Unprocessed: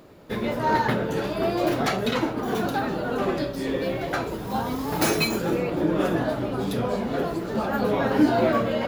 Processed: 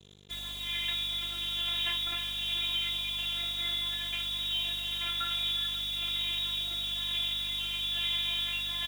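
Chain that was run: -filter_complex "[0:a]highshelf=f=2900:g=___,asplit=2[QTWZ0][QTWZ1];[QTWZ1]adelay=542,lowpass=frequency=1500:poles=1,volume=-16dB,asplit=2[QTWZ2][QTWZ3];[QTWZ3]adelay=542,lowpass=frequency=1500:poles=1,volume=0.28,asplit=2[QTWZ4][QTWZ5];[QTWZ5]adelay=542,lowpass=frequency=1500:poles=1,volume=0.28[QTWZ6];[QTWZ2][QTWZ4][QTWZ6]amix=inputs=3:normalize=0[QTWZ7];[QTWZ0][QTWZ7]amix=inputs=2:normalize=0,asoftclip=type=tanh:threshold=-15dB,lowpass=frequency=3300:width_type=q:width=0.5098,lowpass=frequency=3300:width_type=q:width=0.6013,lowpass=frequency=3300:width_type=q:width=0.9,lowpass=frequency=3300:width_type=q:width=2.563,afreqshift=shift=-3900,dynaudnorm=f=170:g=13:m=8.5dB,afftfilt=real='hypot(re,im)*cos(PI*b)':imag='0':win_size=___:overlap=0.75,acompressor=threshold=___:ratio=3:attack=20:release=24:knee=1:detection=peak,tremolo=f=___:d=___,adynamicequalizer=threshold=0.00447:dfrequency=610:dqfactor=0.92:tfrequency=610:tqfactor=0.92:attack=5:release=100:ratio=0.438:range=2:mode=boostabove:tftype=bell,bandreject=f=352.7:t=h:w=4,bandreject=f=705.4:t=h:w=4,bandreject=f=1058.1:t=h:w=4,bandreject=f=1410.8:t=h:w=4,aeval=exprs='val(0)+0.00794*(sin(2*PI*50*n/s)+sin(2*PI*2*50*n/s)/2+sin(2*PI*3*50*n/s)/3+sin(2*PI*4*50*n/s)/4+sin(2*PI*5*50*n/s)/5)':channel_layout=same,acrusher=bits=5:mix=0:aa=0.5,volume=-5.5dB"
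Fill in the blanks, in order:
-2.5, 512, -30dB, 1.1, 0.31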